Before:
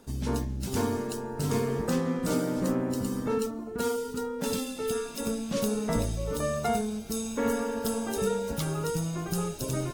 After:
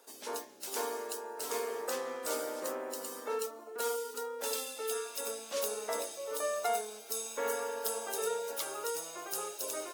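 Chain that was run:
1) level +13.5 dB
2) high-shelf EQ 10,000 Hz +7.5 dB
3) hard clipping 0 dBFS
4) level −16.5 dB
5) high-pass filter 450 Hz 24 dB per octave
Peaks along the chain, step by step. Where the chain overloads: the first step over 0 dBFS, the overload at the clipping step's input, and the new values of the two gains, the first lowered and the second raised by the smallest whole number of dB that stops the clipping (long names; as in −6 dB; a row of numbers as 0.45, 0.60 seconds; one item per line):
−1.5, −1.5, −1.5, −18.0, −18.0 dBFS
no step passes full scale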